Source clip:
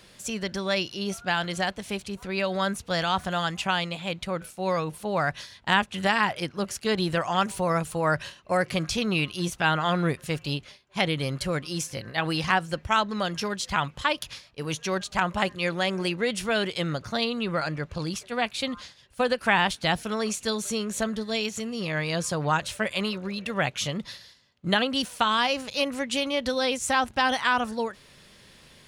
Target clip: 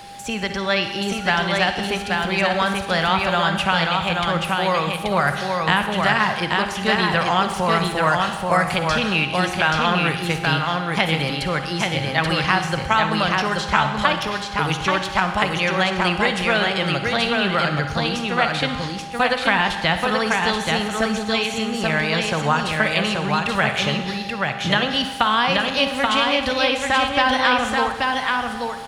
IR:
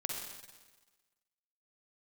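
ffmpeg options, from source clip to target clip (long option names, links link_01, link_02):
-filter_complex "[0:a]acrossover=split=150|720|3700[link_01][link_02][link_03][link_04];[link_01]acompressor=threshold=-40dB:ratio=4[link_05];[link_02]acompressor=threshold=-38dB:ratio=4[link_06];[link_03]acompressor=threshold=-26dB:ratio=4[link_07];[link_04]acompressor=threshold=-50dB:ratio=4[link_08];[link_05][link_06][link_07][link_08]amix=inputs=4:normalize=0,aeval=exprs='val(0)+0.00398*sin(2*PI*800*n/s)':channel_layout=same,aecho=1:1:831:0.708,asplit=2[link_09][link_10];[1:a]atrim=start_sample=2205[link_11];[link_10][link_11]afir=irnorm=-1:irlink=0,volume=-2dB[link_12];[link_09][link_12]amix=inputs=2:normalize=0,volume=5dB"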